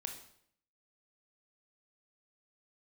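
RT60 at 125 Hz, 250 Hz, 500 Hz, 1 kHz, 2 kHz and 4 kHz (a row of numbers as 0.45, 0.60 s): 0.75, 0.75, 0.70, 0.65, 0.60, 0.60 s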